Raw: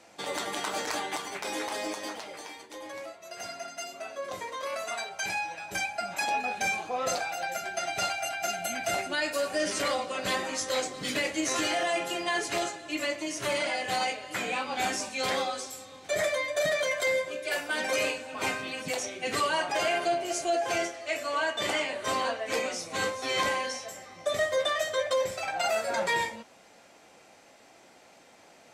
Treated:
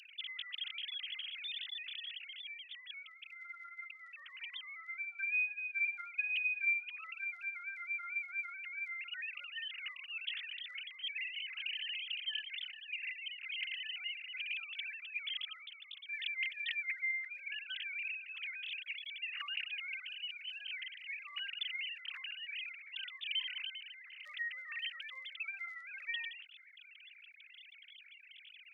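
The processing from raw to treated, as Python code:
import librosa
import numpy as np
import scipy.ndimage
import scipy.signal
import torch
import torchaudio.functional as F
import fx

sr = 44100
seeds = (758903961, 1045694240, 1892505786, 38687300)

y = fx.sine_speech(x, sr)
y = scipy.signal.sosfilt(scipy.signal.cheby2(4, 80, 720.0, 'highpass', fs=sr, output='sos'), y)
y = fx.env_flatten(y, sr, amount_pct=50)
y = F.gain(torch.from_numpy(y), 9.5).numpy()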